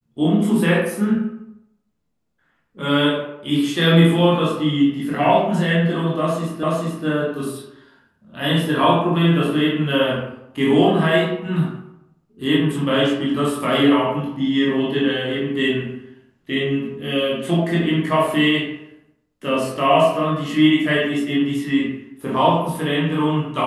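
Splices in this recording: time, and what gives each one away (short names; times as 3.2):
6.63 repeat of the last 0.43 s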